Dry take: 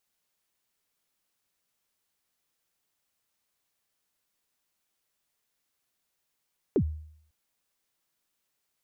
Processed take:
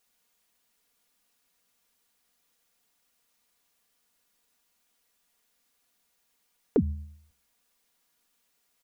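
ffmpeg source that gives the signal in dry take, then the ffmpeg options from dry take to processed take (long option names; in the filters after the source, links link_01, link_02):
-f lavfi -i "aevalsrc='0.126*pow(10,-3*t/0.65)*sin(2*PI*(470*0.073/log(77/470)*(exp(log(77/470)*min(t,0.073)/0.073)-1)+77*max(t-0.073,0)))':duration=0.55:sample_rate=44100"
-filter_complex "[0:a]aecho=1:1:4.2:0.52,bandreject=frequency=68.05:width_type=h:width=4,bandreject=frequency=136.1:width_type=h:width=4,bandreject=frequency=204.15:width_type=h:width=4,asplit=2[link_01][link_02];[link_02]acompressor=threshold=-33dB:ratio=6,volume=-1.5dB[link_03];[link_01][link_03]amix=inputs=2:normalize=0"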